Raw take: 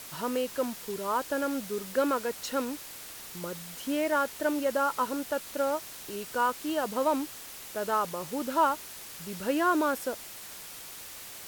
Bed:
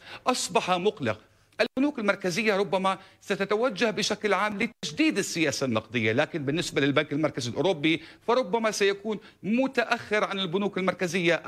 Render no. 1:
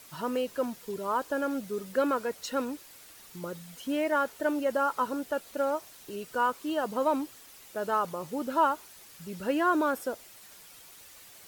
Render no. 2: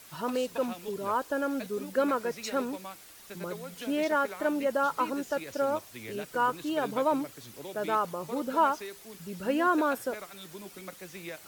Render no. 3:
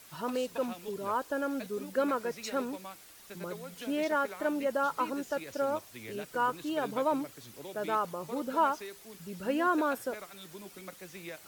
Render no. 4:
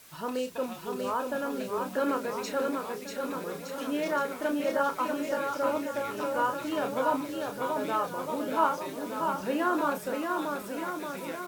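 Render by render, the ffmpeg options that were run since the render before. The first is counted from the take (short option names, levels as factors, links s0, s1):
-af "afftdn=nr=9:nf=-44"
-filter_complex "[1:a]volume=0.126[s0];[0:a][s0]amix=inputs=2:normalize=0"
-af "volume=0.75"
-filter_complex "[0:a]asplit=2[s0][s1];[s1]adelay=31,volume=0.422[s2];[s0][s2]amix=inputs=2:normalize=0,aecho=1:1:640|1216|1734|2201|2621:0.631|0.398|0.251|0.158|0.1"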